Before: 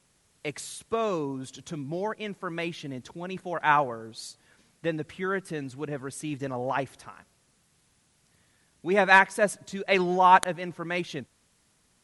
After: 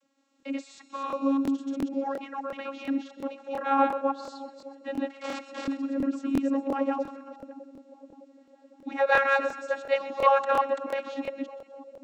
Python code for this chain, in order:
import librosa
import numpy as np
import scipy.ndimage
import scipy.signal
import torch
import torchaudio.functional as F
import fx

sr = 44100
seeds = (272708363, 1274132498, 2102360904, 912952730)

p1 = fx.reverse_delay(x, sr, ms=171, wet_db=-0.5)
p2 = fx.overflow_wrap(p1, sr, gain_db=24.5, at=(5.17, 5.72))
p3 = fx.vocoder(p2, sr, bands=32, carrier='saw', carrier_hz=274.0)
p4 = p3 + fx.echo_split(p3, sr, split_hz=760.0, low_ms=611, high_ms=127, feedback_pct=52, wet_db=-15.0, dry=0)
p5 = fx.buffer_crackle(p4, sr, first_s=0.38, period_s=0.35, block=1024, kind='repeat')
y = p5 * 10.0 ** (-2.5 / 20.0)